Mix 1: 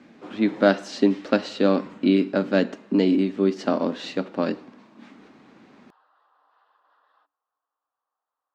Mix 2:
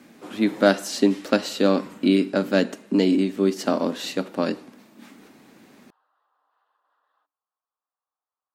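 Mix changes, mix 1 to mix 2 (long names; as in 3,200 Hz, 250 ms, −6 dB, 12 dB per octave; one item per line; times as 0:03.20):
speech: remove high-frequency loss of the air 140 metres
background −7.5 dB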